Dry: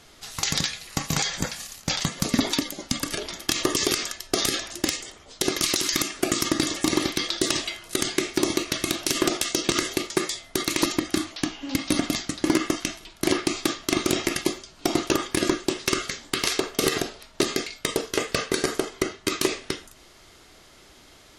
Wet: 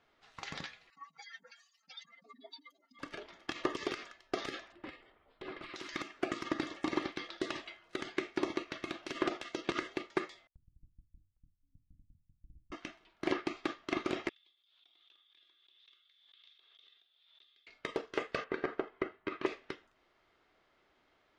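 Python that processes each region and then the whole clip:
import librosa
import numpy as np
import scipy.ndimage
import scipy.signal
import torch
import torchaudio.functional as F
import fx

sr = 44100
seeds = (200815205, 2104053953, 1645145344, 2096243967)

y = fx.chain(x, sr, fx.spec_expand(power=3.2),
    fx.highpass(hz=980.0, slope=12),
    fx.comb(ms=4.4, depth=0.85), at=(0.9, 2.99))
y = fx.chain(y, sr, fx.moving_average(points=7),
    fx.clip_hard(threshold_db=-25.5),
    fx.low_shelf(hz=73.0, db=8.5), at=(4.72, 5.75))
y = fx.chain(y, sr, fx.lower_of_two(delay_ms=0.75),
    fx.cheby2_lowpass(hz=520.0, order=4, stop_db=70),
    fx.gate_hold(open_db=-46.0, close_db=-49.0, hold_ms=71.0, range_db=-21, attack_ms=1.4, release_ms=100.0), at=(10.47, 12.72))
y = fx.chain(y, sr, fx.bandpass_q(hz=3500.0, q=19.0),
    fx.pre_swell(db_per_s=41.0), at=(14.29, 17.67))
y = fx.chain(y, sr, fx.lowpass(hz=2500.0, slope=12),
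    fx.quant_float(bits=4), at=(18.44, 19.46))
y = scipy.signal.sosfilt(scipy.signal.butter(2, 2200.0, 'lowpass', fs=sr, output='sos'), y)
y = fx.low_shelf(y, sr, hz=270.0, db=-11.5)
y = fx.upward_expand(y, sr, threshold_db=-43.0, expansion=1.5)
y = y * 10.0 ** (-5.0 / 20.0)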